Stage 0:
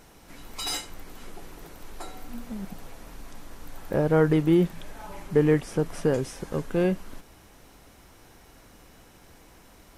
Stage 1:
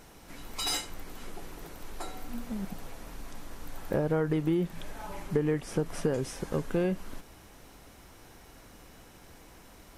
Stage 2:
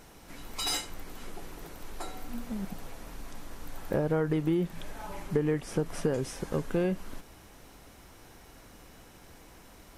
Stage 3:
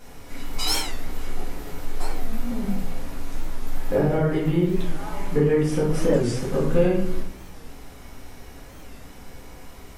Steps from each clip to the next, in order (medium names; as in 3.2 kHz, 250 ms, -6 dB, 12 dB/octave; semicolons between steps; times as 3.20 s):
compression 6:1, threshold -24 dBFS, peak gain reduction 9.5 dB
no audible change
simulated room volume 130 m³, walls mixed, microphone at 1.9 m; warped record 45 rpm, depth 160 cents